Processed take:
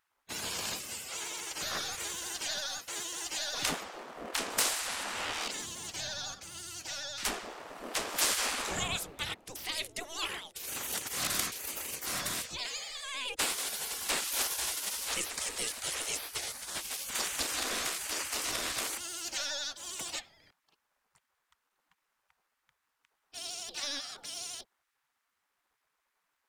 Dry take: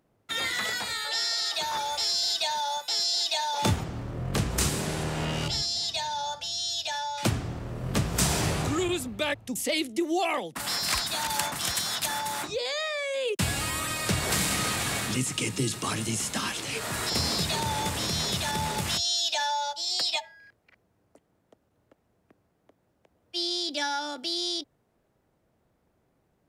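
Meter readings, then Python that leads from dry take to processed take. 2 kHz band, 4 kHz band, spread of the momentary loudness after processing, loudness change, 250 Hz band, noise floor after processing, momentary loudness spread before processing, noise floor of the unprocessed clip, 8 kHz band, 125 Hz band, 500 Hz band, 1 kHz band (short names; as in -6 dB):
-5.0 dB, -7.5 dB, 9 LU, -6.0 dB, -15.5 dB, -82 dBFS, 6 LU, -72 dBFS, -2.0 dB, -20.5 dB, -10.5 dB, -10.0 dB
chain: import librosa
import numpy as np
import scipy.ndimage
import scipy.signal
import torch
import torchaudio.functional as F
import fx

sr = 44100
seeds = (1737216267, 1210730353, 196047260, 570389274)

y = np.where(x < 0.0, 10.0 ** (-3.0 / 20.0) * x, x)
y = fx.vibrato(y, sr, rate_hz=12.0, depth_cents=74.0)
y = fx.spec_gate(y, sr, threshold_db=-15, keep='weak')
y = y * librosa.db_to_amplitude(2.0)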